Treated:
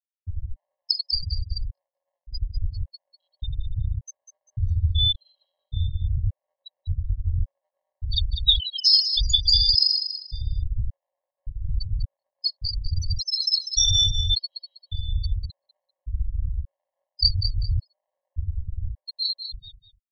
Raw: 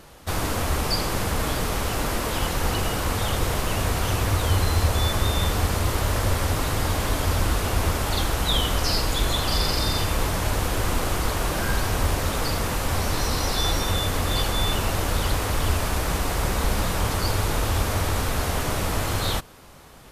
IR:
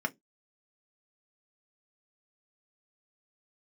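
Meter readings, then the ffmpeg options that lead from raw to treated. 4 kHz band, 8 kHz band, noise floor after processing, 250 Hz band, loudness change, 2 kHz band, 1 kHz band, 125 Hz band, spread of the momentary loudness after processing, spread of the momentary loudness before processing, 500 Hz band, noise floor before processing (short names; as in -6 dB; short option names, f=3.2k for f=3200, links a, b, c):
+5.5 dB, -7.0 dB, under -85 dBFS, under -20 dB, +1.0 dB, under -40 dB, under -40 dB, -4.0 dB, 19 LU, 3 LU, under -40 dB, -28 dBFS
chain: -af "aeval=exprs='val(0)+0.00794*sin(2*PI*1200*n/s)':c=same,lowpass=6.5k,alimiter=limit=-14dB:level=0:latency=1:release=131,aexciter=amount=4.1:drive=9.6:freq=3.7k,afftfilt=real='re*gte(hypot(re,im),0.447)':imag='im*gte(hypot(re,im),0.447)':win_size=1024:overlap=0.75,aecho=1:1:197|394|591:0.355|0.0887|0.0222,afftfilt=real='re*gt(sin(2*PI*0.87*pts/sr)*(1-2*mod(floor(b*sr/1024/550),2)),0)':imag='im*gt(sin(2*PI*0.87*pts/sr)*(1-2*mod(floor(b*sr/1024/550),2)),0)':win_size=1024:overlap=0.75,volume=2.5dB"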